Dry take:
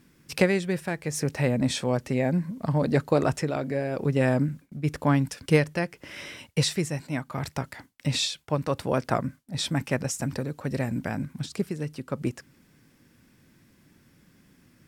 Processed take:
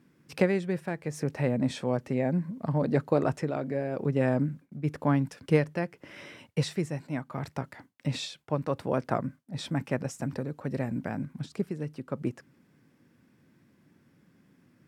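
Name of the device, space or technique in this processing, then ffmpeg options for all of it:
through cloth: -af "highpass=110,highshelf=f=2.5k:g=-11,volume=-2dB"

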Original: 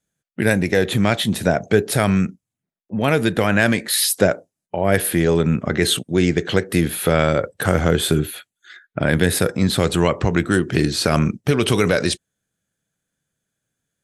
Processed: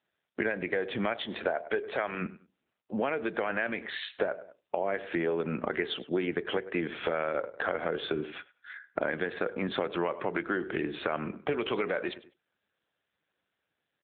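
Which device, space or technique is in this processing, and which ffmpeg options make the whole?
voicemail: -filter_complex "[0:a]asplit=3[a][b][c];[a]afade=t=out:st=1.19:d=0.02[d];[b]bass=f=250:g=-11,treble=f=4k:g=4,afade=t=in:st=1.19:d=0.02,afade=t=out:st=2.2:d=0.02[e];[c]afade=t=in:st=2.2:d=0.02[f];[d][e][f]amix=inputs=3:normalize=0,highpass=380,lowpass=2.8k,asplit=2[g][h];[h]adelay=100,lowpass=f=2.5k:p=1,volume=-19dB,asplit=2[i][j];[j]adelay=100,lowpass=f=2.5k:p=1,volume=0.26[k];[g][i][k]amix=inputs=3:normalize=0,acompressor=threshold=-27dB:ratio=10,volume=1.5dB" -ar 8000 -c:a libopencore_amrnb -b:a 7400

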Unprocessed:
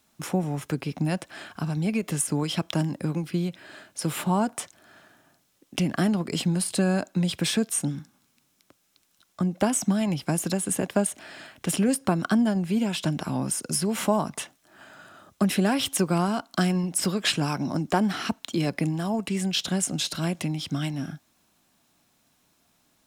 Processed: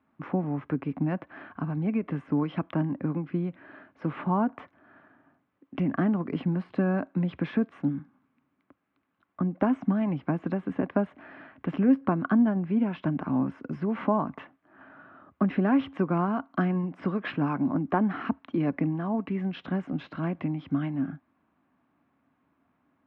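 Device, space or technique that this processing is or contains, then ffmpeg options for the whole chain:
bass cabinet: -af "highpass=72,equalizer=f=74:t=q:w=4:g=5,equalizer=f=270:t=q:w=4:g=9,equalizer=f=1.1k:t=q:w=4:g=5,lowpass=f=2.1k:w=0.5412,lowpass=f=2.1k:w=1.3066,volume=-3.5dB"

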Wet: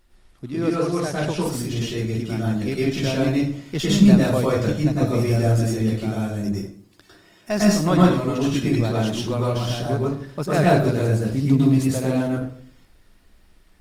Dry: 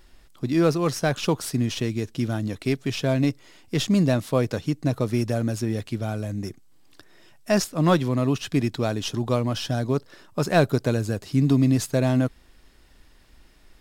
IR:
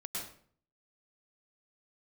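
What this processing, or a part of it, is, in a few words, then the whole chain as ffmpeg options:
speakerphone in a meeting room: -filter_complex "[1:a]atrim=start_sample=2205[a];[0:a][a]afir=irnorm=-1:irlink=0,dynaudnorm=f=770:g=7:m=11.5dB,volume=-1dB" -ar 48000 -c:a libopus -b:a 24k

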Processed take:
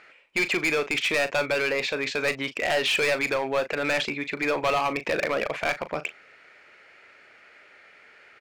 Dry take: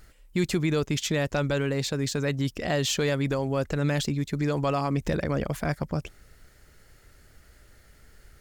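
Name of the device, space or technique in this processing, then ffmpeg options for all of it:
megaphone: -filter_complex "[0:a]highpass=540,lowpass=2.7k,equalizer=f=2.4k:t=o:w=0.4:g=12,asoftclip=type=hard:threshold=-27.5dB,asplit=2[a][b];[b]adelay=38,volume=-12dB[c];[a][c]amix=inputs=2:normalize=0,volume=8dB"

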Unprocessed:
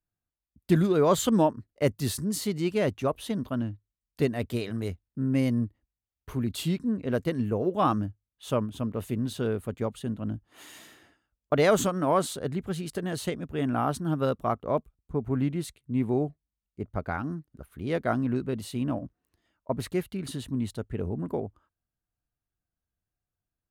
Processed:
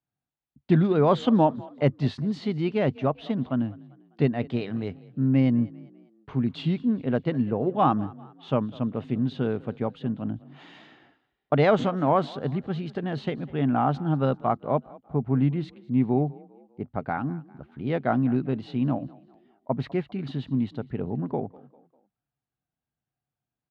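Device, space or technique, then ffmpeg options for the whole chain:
frequency-shifting delay pedal into a guitar cabinet: -filter_complex "[0:a]asplit=4[a][b][c][d];[b]adelay=199,afreqshift=33,volume=-22dB[e];[c]adelay=398,afreqshift=66,volume=-29.3dB[f];[d]adelay=597,afreqshift=99,volume=-36.7dB[g];[a][e][f][g]amix=inputs=4:normalize=0,highpass=82,equalizer=f=85:t=q:w=4:g=-8,equalizer=f=140:t=q:w=4:g=8,equalizer=f=250:t=q:w=4:g=5,equalizer=f=790:t=q:w=4:g=7,lowpass=f=3.8k:w=0.5412,lowpass=f=3.8k:w=1.3066"

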